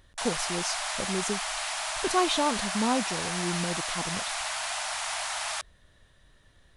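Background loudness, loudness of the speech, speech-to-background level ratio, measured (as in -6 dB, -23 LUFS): -30.5 LUFS, -31.0 LUFS, -0.5 dB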